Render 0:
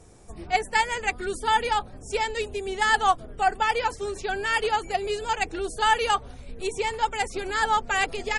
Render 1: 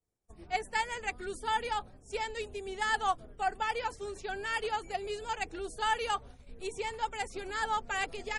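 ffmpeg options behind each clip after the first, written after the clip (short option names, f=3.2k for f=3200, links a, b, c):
-af "agate=range=-33dB:threshold=-35dB:ratio=3:detection=peak,volume=-9dB"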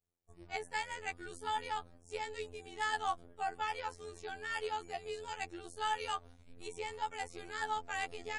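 -af "afftfilt=real='hypot(re,im)*cos(PI*b)':imag='0':win_size=2048:overlap=0.75,volume=-2dB"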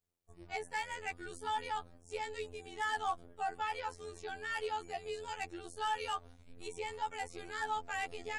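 -af "asoftclip=type=tanh:threshold=-24.5dB,volume=1dB"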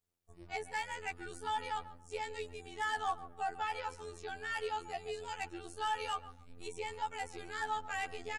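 -filter_complex "[0:a]asplit=2[a][b];[b]adelay=140,lowpass=f=1.4k:p=1,volume=-13dB,asplit=2[c][d];[d]adelay=140,lowpass=f=1.4k:p=1,volume=0.27,asplit=2[e][f];[f]adelay=140,lowpass=f=1.4k:p=1,volume=0.27[g];[a][c][e][g]amix=inputs=4:normalize=0"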